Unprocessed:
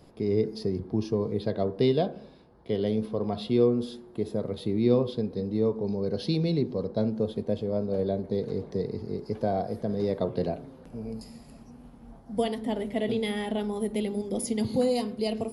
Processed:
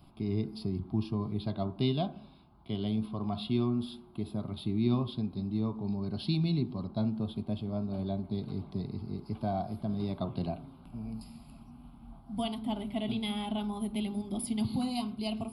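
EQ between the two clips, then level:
notch filter 920 Hz, Q 25
phaser with its sweep stopped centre 1,800 Hz, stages 6
0.0 dB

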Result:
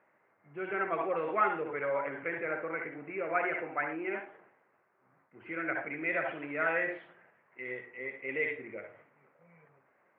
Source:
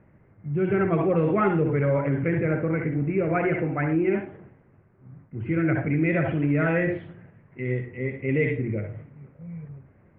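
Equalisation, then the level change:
high-pass filter 870 Hz 12 dB per octave
high-shelf EQ 2,200 Hz −8.5 dB
+1.5 dB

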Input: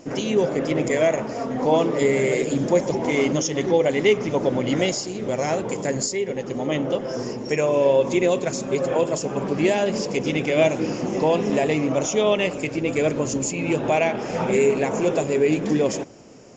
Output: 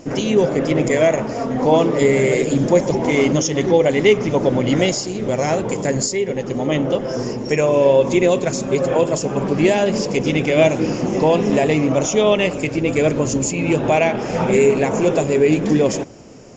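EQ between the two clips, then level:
low-shelf EQ 110 Hz +8 dB
+4.0 dB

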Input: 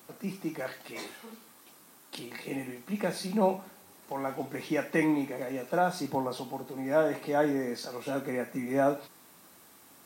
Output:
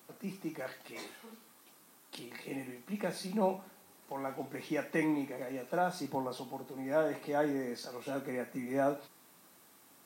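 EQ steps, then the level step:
high-pass filter 89 Hz
−5.0 dB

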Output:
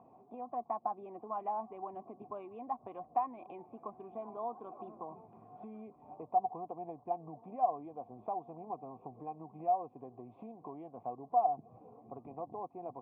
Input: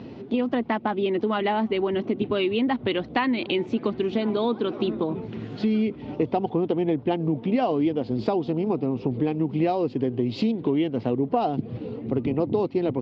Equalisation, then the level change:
formant resonators in series a
parametric band 160 Hz +3.5 dB 0.63 octaves
−1.0 dB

